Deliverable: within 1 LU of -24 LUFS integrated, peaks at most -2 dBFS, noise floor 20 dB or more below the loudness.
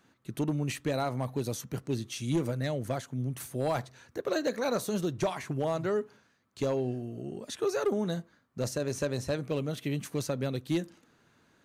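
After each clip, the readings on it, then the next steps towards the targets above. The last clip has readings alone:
clipped 0.7%; flat tops at -22.0 dBFS; loudness -33.0 LUFS; peak -22.0 dBFS; loudness target -24.0 LUFS
-> clip repair -22 dBFS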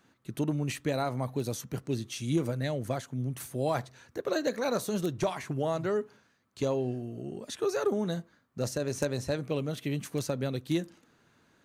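clipped 0.0%; loudness -32.5 LUFS; peak -13.0 dBFS; loudness target -24.0 LUFS
-> gain +8.5 dB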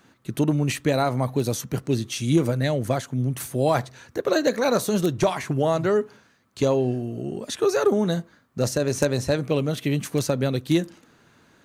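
loudness -24.0 LUFS; peak -4.5 dBFS; noise floor -59 dBFS

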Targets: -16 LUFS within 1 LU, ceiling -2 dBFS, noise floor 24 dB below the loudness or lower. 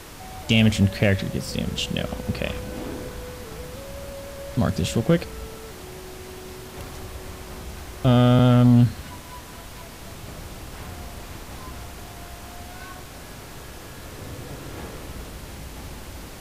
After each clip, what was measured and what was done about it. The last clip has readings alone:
clipped 0.9%; flat tops at -9.5 dBFS; noise floor -40 dBFS; noise floor target -46 dBFS; loudness -21.5 LUFS; peak -9.5 dBFS; loudness target -16.0 LUFS
-> clip repair -9.5 dBFS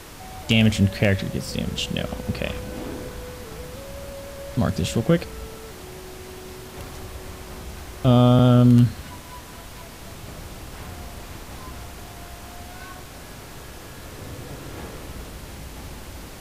clipped 0.0%; noise floor -40 dBFS; noise floor target -45 dBFS
-> noise print and reduce 6 dB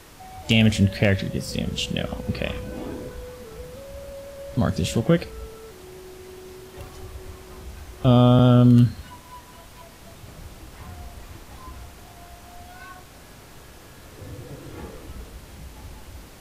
noise floor -46 dBFS; loudness -20.5 LUFS; peak -4.5 dBFS; loudness target -16.0 LUFS
-> gain +4.5 dB; limiter -2 dBFS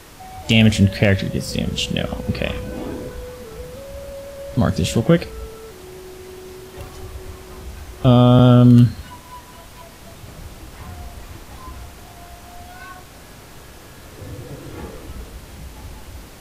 loudness -16.5 LUFS; peak -2.0 dBFS; noise floor -42 dBFS

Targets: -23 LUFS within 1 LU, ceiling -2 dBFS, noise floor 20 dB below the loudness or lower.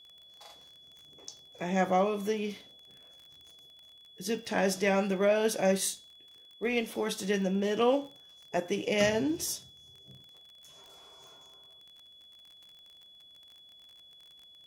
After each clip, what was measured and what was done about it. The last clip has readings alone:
ticks 37/s; steady tone 3400 Hz; tone level -53 dBFS; loudness -30.0 LUFS; peak -13.5 dBFS; loudness target -23.0 LUFS
-> de-click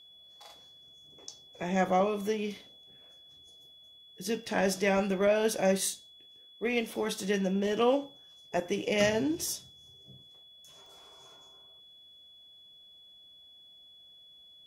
ticks 0.14/s; steady tone 3400 Hz; tone level -53 dBFS
-> notch 3400 Hz, Q 30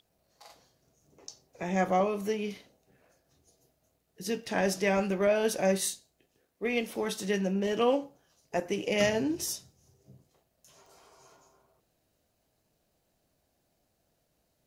steady tone none; loudness -30.0 LUFS; peak -13.5 dBFS; loudness target -23.0 LUFS
-> gain +7 dB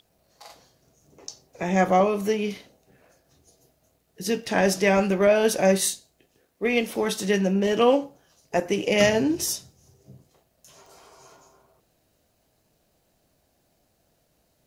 loudness -23.0 LUFS; peak -6.5 dBFS; noise floor -69 dBFS

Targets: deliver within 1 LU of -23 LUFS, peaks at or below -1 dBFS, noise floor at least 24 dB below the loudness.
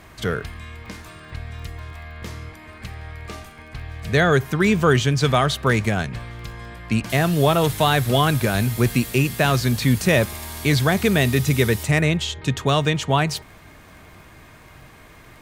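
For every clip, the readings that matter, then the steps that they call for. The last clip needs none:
ticks 18/s; loudness -20.0 LUFS; peak -4.5 dBFS; loudness target -23.0 LUFS
-> de-click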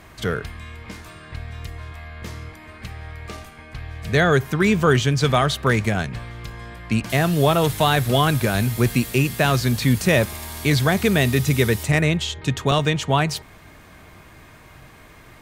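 ticks 0.52/s; loudness -20.0 LUFS; peak -4.5 dBFS; loudness target -23.0 LUFS
-> gain -3 dB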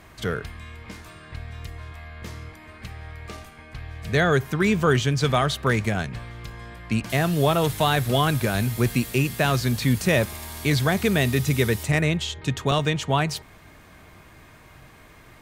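loudness -23.0 LUFS; peak -7.5 dBFS; noise floor -49 dBFS

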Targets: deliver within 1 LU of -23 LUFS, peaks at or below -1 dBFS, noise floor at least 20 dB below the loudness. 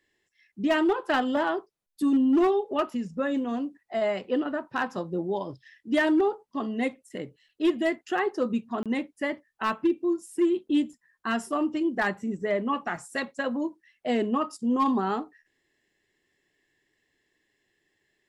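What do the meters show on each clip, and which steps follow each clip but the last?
clipped 0.4%; flat tops at -17.0 dBFS; dropouts 1; longest dropout 27 ms; loudness -27.5 LUFS; peak -17.0 dBFS; loudness target -23.0 LUFS
-> clip repair -17 dBFS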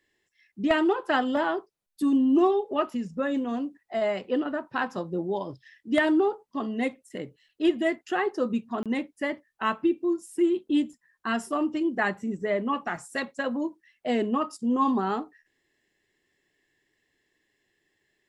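clipped 0.0%; dropouts 1; longest dropout 27 ms
-> interpolate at 8.83, 27 ms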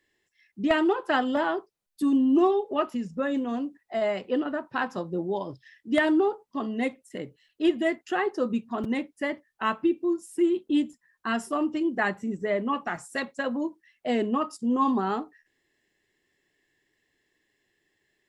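dropouts 0; loudness -27.5 LUFS; peak -8.0 dBFS; loudness target -23.0 LUFS
-> gain +4.5 dB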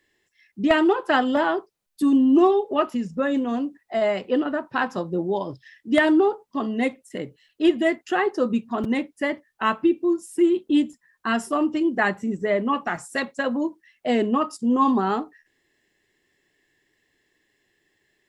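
loudness -23.0 LUFS; peak -3.5 dBFS; noise floor -72 dBFS

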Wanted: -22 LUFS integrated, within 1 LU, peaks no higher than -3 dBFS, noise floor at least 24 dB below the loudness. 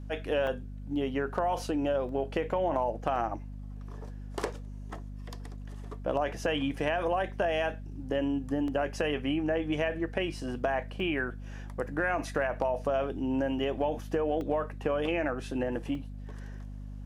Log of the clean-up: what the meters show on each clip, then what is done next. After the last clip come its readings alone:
dropouts 7; longest dropout 1.5 ms; hum 50 Hz; harmonics up to 250 Hz; hum level -38 dBFS; loudness -31.5 LUFS; peak -13.5 dBFS; loudness target -22.0 LUFS
-> interpolate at 0.47/2.09/3.16/8.68/11/14.41/15.95, 1.5 ms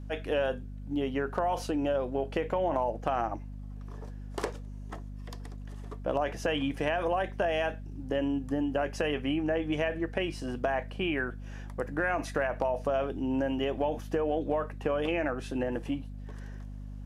dropouts 0; hum 50 Hz; harmonics up to 250 Hz; hum level -38 dBFS
-> de-hum 50 Hz, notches 5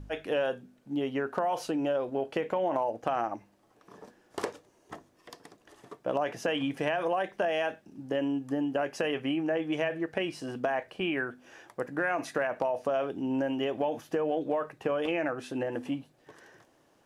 hum none; loudness -31.5 LUFS; peak -13.5 dBFS; loudness target -22.0 LUFS
-> gain +9.5 dB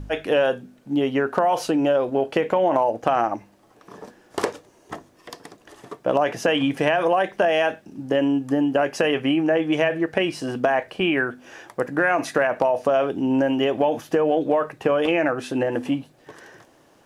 loudness -22.0 LUFS; peak -4.0 dBFS; noise floor -56 dBFS

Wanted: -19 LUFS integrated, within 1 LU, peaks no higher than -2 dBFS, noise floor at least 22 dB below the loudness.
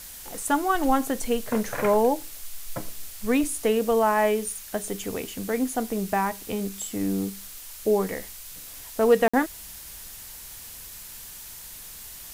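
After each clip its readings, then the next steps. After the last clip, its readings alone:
dropouts 1; longest dropout 55 ms; noise floor -42 dBFS; noise floor target -48 dBFS; loudness -25.5 LUFS; peak -7.5 dBFS; loudness target -19.0 LUFS
-> interpolate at 9.28, 55 ms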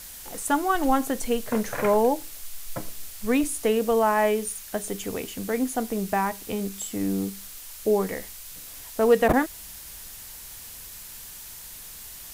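dropouts 0; noise floor -42 dBFS; noise floor target -48 dBFS
-> noise print and reduce 6 dB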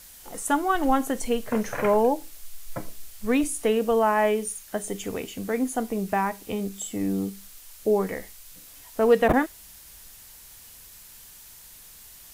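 noise floor -48 dBFS; loudness -25.5 LUFS; peak -7.5 dBFS; loudness target -19.0 LUFS
-> gain +6.5 dB; limiter -2 dBFS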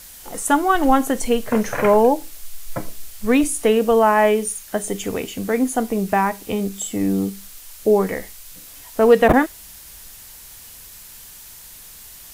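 loudness -19.0 LUFS; peak -2.0 dBFS; noise floor -41 dBFS

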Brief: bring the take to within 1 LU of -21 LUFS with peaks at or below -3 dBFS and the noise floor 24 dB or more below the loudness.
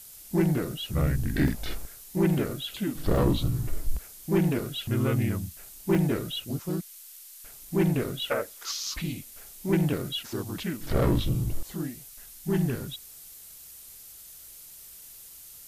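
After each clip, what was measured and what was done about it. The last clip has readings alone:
dropouts 6; longest dropout 2.3 ms; noise floor -48 dBFS; noise floor target -53 dBFS; loudness -29.0 LUFS; peak -13.5 dBFS; loudness target -21.0 LUFS
-> interpolate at 1.48/3.16/4.66/5.95/8.87/9.94, 2.3 ms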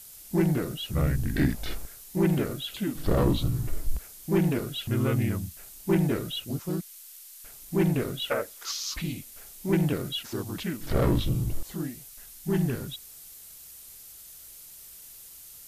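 dropouts 0; noise floor -48 dBFS; noise floor target -53 dBFS
-> denoiser 6 dB, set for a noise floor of -48 dBFS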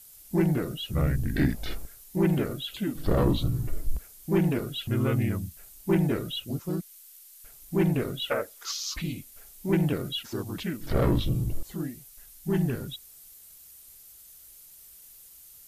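noise floor -51 dBFS; noise floor target -53 dBFS
-> denoiser 6 dB, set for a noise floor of -51 dBFS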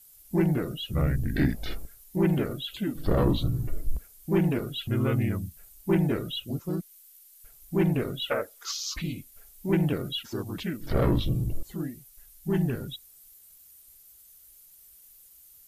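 noise floor -54 dBFS; loudness -29.0 LUFS; peak -14.0 dBFS; loudness target -21.0 LUFS
-> gain +8 dB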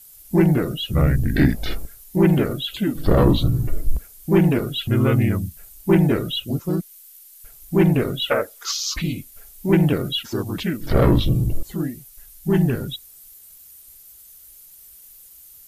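loudness -21.0 LUFS; peak -6.0 dBFS; noise floor -46 dBFS

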